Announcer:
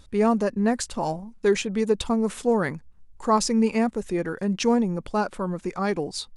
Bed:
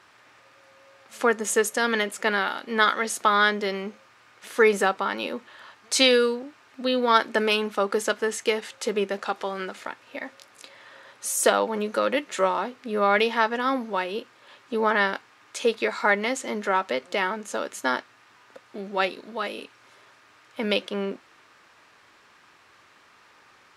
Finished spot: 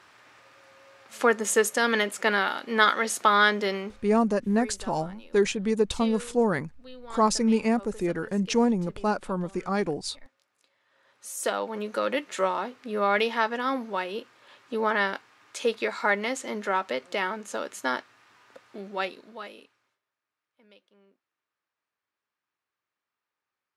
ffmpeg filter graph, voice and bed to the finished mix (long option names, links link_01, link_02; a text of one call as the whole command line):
ffmpeg -i stem1.wav -i stem2.wav -filter_complex "[0:a]adelay=3900,volume=-1.5dB[link_01];[1:a]volume=19dB,afade=type=out:start_time=3.71:duration=0.6:silence=0.0794328,afade=type=in:start_time=10.87:duration=1.23:silence=0.112202,afade=type=out:start_time=18.65:duration=1.34:silence=0.0316228[link_02];[link_01][link_02]amix=inputs=2:normalize=0" out.wav